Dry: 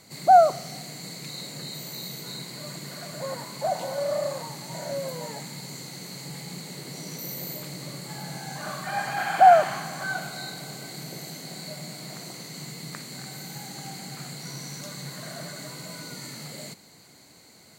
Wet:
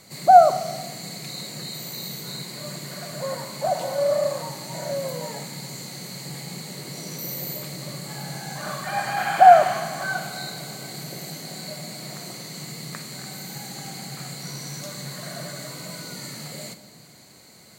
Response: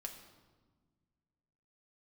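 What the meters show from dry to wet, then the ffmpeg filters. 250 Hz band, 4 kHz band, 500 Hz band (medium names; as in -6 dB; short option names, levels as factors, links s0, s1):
+2.5 dB, +3.0 dB, +3.5 dB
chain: -filter_complex "[0:a]asplit=2[s0][s1];[1:a]atrim=start_sample=2205,highshelf=f=12000:g=5[s2];[s1][s2]afir=irnorm=-1:irlink=0,volume=1.68[s3];[s0][s3]amix=inputs=2:normalize=0,volume=0.668"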